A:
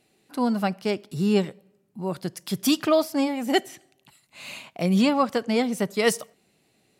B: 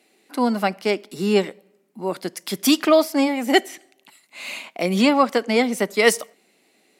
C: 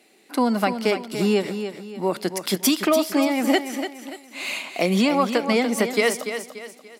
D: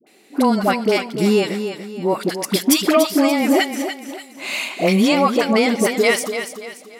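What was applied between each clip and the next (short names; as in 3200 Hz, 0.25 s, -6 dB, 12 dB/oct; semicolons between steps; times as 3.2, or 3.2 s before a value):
HPF 230 Hz 24 dB/oct; bell 2100 Hz +5.5 dB 0.27 oct; gain +5 dB
compressor, threshold -20 dBFS, peak gain reduction 11 dB; on a send: feedback echo 0.29 s, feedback 38%, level -9 dB; on the sum: gain +3.5 dB
dispersion highs, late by 69 ms, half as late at 730 Hz; gain +4.5 dB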